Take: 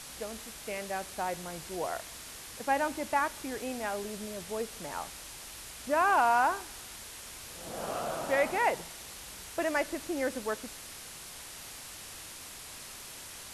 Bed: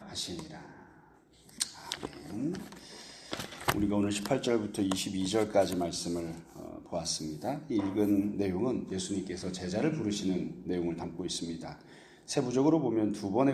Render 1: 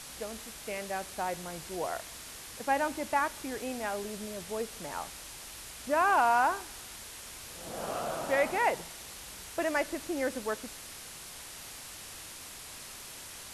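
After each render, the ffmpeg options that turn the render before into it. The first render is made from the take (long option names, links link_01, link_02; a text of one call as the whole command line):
ffmpeg -i in.wav -af anull out.wav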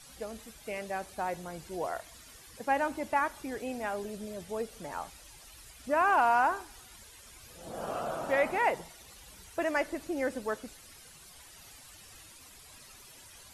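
ffmpeg -i in.wav -af "afftdn=noise_reduction=12:noise_floor=-46" out.wav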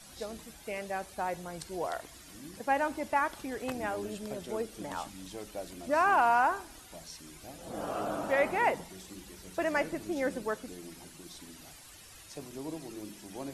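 ffmpeg -i in.wav -i bed.wav -filter_complex "[1:a]volume=-14.5dB[link_01];[0:a][link_01]amix=inputs=2:normalize=0" out.wav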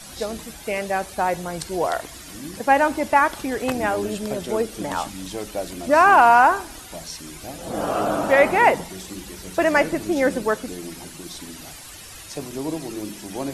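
ffmpeg -i in.wav -af "volume=12dB" out.wav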